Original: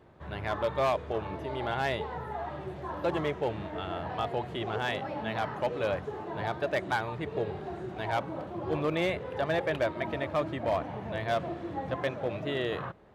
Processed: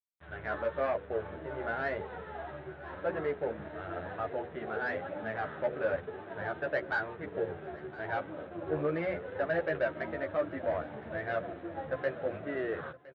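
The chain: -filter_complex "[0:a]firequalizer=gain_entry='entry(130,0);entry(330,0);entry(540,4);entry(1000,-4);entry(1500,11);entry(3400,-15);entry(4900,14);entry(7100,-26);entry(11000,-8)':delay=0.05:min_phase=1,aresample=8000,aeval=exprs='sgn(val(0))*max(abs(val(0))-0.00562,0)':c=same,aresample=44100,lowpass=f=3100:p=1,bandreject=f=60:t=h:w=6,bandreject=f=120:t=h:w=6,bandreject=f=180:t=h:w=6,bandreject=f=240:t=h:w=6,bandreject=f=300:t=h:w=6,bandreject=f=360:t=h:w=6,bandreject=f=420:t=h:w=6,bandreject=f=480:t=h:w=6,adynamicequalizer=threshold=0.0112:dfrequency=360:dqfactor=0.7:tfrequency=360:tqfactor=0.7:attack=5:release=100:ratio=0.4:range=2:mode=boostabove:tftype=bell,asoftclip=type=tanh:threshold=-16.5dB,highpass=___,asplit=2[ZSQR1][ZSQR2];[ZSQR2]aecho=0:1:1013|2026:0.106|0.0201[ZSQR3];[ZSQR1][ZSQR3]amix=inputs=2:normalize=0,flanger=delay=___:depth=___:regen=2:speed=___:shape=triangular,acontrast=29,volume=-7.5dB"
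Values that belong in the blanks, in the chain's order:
45, 10, 3.7, 0.96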